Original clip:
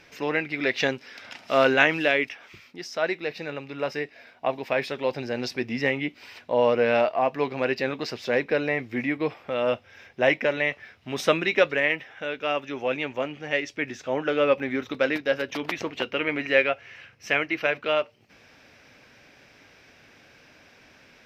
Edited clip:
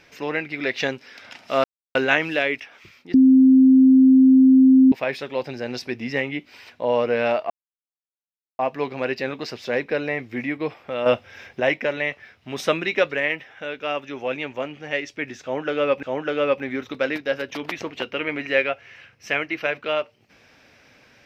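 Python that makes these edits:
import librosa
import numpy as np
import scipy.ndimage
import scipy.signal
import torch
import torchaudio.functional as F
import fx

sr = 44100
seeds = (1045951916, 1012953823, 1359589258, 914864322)

y = fx.edit(x, sr, fx.insert_silence(at_s=1.64, length_s=0.31),
    fx.bleep(start_s=2.83, length_s=1.78, hz=262.0, db=-9.0),
    fx.insert_silence(at_s=7.19, length_s=1.09),
    fx.clip_gain(start_s=9.66, length_s=0.54, db=6.5),
    fx.repeat(start_s=14.03, length_s=0.6, count=2), tone=tone)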